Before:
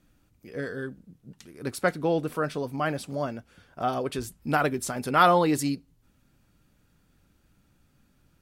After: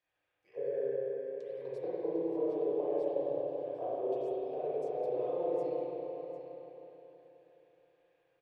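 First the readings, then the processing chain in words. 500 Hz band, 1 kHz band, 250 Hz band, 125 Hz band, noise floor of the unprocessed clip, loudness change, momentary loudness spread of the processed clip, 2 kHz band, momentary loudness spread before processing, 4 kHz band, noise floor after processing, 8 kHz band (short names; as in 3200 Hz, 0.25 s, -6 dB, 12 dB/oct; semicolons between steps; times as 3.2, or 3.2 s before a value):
-2.5 dB, -17.0 dB, -11.0 dB, -21.5 dB, -66 dBFS, -8.5 dB, 12 LU, under -25 dB, 16 LU, under -25 dB, -82 dBFS, under -35 dB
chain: LPF 3700 Hz 6 dB/oct; high shelf 2600 Hz +9 dB; compressor 16:1, threshold -29 dBFS, peak gain reduction 17 dB; fixed phaser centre 570 Hz, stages 4; auto-wah 230–1500 Hz, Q 3.7, down, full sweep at -29.5 dBFS; on a send: echo 0.75 s -13 dB; on the sum: spring tank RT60 3.8 s, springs 30/34/52 ms, chirp 70 ms, DRR -10 dB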